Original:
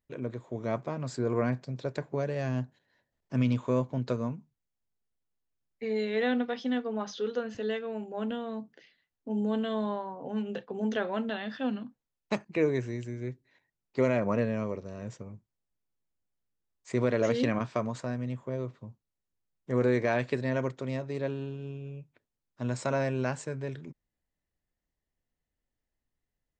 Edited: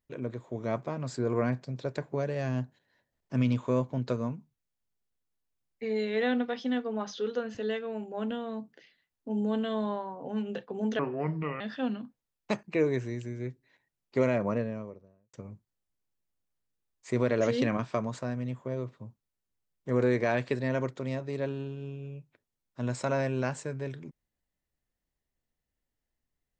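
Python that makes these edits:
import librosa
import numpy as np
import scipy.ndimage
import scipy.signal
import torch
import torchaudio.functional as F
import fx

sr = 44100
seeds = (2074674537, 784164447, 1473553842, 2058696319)

y = fx.studio_fade_out(x, sr, start_s=14.05, length_s=1.1)
y = fx.edit(y, sr, fx.speed_span(start_s=10.99, length_s=0.43, speed=0.7), tone=tone)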